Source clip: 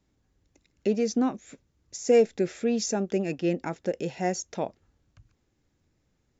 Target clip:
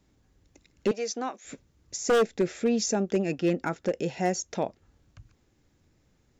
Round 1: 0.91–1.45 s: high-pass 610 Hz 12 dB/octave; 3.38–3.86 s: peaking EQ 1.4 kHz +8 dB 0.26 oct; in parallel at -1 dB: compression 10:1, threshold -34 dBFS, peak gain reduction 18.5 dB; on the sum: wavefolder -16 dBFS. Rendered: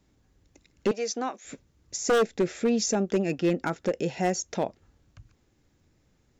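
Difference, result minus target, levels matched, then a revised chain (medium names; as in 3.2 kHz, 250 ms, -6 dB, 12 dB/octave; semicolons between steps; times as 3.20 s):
compression: peak gain reduction -6 dB
0.91–1.45 s: high-pass 610 Hz 12 dB/octave; 3.38–3.86 s: peaking EQ 1.4 kHz +8 dB 0.26 oct; in parallel at -1 dB: compression 10:1, threshold -40.5 dBFS, peak gain reduction 24 dB; on the sum: wavefolder -16 dBFS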